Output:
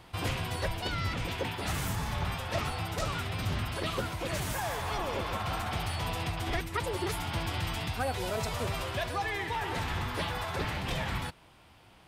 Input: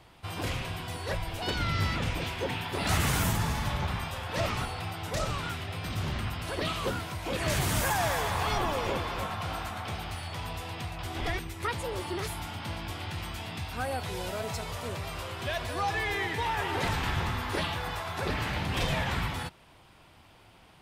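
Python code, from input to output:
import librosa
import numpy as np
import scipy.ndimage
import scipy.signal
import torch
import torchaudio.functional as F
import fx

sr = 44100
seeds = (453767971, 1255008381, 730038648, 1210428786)

y = fx.rider(x, sr, range_db=5, speed_s=0.5)
y = fx.stretch_vocoder(y, sr, factor=0.58)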